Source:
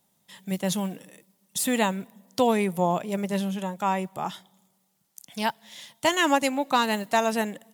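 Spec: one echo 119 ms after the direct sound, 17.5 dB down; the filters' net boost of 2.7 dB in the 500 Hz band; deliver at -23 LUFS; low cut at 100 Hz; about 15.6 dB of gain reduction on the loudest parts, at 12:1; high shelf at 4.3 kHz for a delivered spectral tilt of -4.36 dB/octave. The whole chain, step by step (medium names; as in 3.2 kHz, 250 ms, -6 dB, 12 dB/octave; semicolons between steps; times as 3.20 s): high-pass 100 Hz; peaking EQ 500 Hz +3.5 dB; treble shelf 4.3 kHz -4 dB; compression 12:1, threshold -31 dBFS; delay 119 ms -17.5 dB; trim +14 dB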